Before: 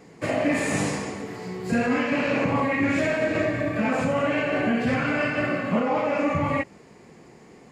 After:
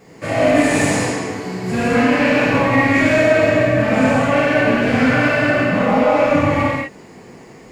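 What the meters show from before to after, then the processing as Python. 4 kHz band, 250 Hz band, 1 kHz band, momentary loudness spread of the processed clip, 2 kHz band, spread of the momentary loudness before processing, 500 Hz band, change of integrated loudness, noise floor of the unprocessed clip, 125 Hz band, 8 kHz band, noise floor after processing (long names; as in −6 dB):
+9.5 dB, +8.0 dB, +9.0 dB, 8 LU, +9.5 dB, 6 LU, +9.5 dB, +9.0 dB, −50 dBFS, +9.0 dB, +9.0 dB, −41 dBFS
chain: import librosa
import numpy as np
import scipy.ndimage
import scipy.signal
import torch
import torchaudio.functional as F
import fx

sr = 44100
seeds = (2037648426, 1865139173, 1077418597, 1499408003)

y = np.clip(x, -10.0 ** (-18.5 / 20.0), 10.0 ** (-18.5 / 20.0))
y = fx.rev_gated(y, sr, seeds[0], gate_ms=270, shape='flat', drr_db=-7.5)
y = fx.quant_dither(y, sr, seeds[1], bits=12, dither='triangular')
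y = F.gain(torch.from_numpy(y), 1.0).numpy()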